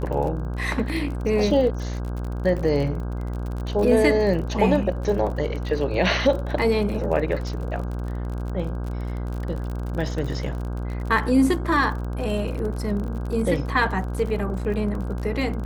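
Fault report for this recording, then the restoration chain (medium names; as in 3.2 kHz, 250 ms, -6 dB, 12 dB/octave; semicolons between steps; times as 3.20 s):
buzz 60 Hz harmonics 27 -28 dBFS
crackle 41 per s -30 dBFS
3.83 s: dropout 2.6 ms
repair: de-click; de-hum 60 Hz, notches 27; interpolate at 3.83 s, 2.6 ms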